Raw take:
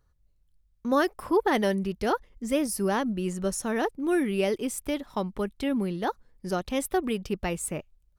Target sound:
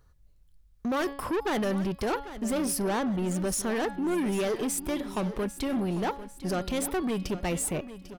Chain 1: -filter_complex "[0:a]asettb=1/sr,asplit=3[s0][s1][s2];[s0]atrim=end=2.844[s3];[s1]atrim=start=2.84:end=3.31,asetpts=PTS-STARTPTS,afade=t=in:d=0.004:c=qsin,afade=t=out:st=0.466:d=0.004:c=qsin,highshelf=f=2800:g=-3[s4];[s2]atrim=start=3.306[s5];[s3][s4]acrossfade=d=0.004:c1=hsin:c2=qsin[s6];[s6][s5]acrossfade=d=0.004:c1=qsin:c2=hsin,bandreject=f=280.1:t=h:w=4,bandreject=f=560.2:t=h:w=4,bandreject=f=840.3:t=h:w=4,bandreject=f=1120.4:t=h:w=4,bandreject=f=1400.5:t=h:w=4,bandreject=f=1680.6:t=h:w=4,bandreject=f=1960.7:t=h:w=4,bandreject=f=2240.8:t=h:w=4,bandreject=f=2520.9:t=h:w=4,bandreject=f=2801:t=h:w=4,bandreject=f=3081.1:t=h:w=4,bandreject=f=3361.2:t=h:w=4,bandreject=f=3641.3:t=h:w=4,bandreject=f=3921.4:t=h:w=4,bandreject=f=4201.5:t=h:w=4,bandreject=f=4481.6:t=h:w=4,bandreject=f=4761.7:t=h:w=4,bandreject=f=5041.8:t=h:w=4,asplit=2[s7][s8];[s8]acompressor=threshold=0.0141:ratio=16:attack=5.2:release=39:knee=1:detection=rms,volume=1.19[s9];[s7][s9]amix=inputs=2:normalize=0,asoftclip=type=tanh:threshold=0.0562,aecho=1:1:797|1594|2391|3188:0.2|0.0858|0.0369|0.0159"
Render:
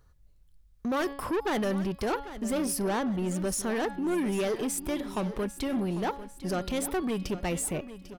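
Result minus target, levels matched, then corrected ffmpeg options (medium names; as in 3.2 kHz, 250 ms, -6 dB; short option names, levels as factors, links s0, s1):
compression: peak gain reduction +6 dB
-filter_complex "[0:a]asettb=1/sr,asplit=3[s0][s1][s2];[s0]atrim=end=2.844[s3];[s1]atrim=start=2.84:end=3.31,asetpts=PTS-STARTPTS,afade=t=in:d=0.004:c=qsin,afade=t=out:st=0.466:d=0.004:c=qsin,highshelf=f=2800:g=-3[s4];[s2]atrim=start=3.306[s5];[s3][s4]acrossfade=d=0.004:c1=hsin:c2=qsin[s6];[s6][s5]acrossfade=d=0.004:c1=qsin:c2=hsin,bandreject=f=280.1:t=h:w=4,bandreject=f=560.2:t=h:w=4,bandreject=f=840.3:t=h:w=4,bandreject=f=1120.4:t=h:w=4,bandreject=f=1400.5:t=h:w=4,bandreject=f=1680.6:t=h:w=4,bandreject=f=1960.7:t=h:w=4,bandreject=f=2240.8:t=h:w=4,bandreject=f=2520.9:t=h:w=4,bandreject=f=2801:t=h:w=4,bandreject=f=3081.1:t=h:w=4,bandreject=f=3361.2:t=h:w=4,bandreject=f=3641.3:t=h:w=4,bandreject=f=3921.4:t=h:w=4,bandreject=f=4201.5:t=h:w=4,bandreject=f=4481.6:t=h:w=4,bandreject=f=4761.7:t=h:w=4,bandreject=f=5041.8:t=h:w=4,asplit=2[s7][s8];[s8]acompressor=threshold=0.0299:ratio=16:attack=5.2:release=39:knee=1:detection=rms,volume=1.19[s9];[s7][s9]amix=inputs=2:normalize=0,asoftclip=type=tanh:threshold=0.0562,aecho=1:1:797|1594|2391|3188:0.2|0.0858|0.0369|0.0159"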